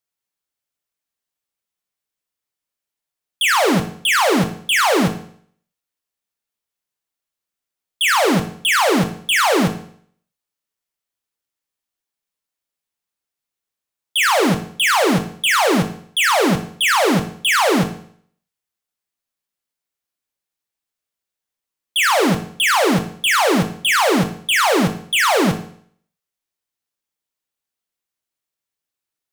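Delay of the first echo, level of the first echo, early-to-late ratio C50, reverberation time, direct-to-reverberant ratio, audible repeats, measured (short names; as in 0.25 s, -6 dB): none, none, 10.5 dB, 0.55 s, 5.0 dB, none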